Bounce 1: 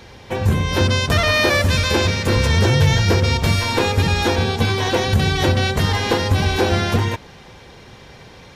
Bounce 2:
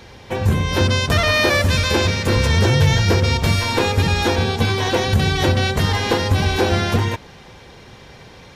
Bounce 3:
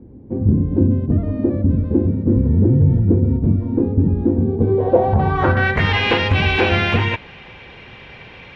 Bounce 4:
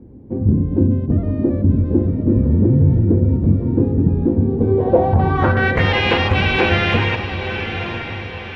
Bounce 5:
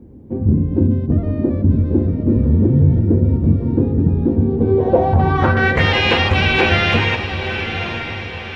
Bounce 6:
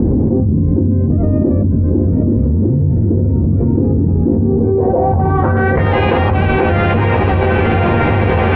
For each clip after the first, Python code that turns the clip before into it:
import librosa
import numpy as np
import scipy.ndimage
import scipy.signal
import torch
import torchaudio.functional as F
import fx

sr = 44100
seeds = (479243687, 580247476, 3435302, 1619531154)

y1 = x
y2 = fx.filter_sweep_lowpass(y1, sr, from_hz=280.0, to_hz=2600.0, start_s=4.44, end_s=5.93, q=3.4)
y3 = fx.echo_diffused(y2, sr, ms=976, feedback_pct=42, wet_db=-8)
y4 = fx.high_shelf(y3, sr, hz=4400.0, db=9.5)
y4 = fx.doubler(y4, sr, ms=13.0, db=-12.0)
y5 = scipy.signal.sosfilt(scipy.signal.butter(2, 1100.0, 'lowpass', fs=sr, output='sos'), y4)
y5 = fx.env_flatten(y5, sr, amount_pct=100)
y5 = y5 * librosa.db_to_amplitude(-3.5)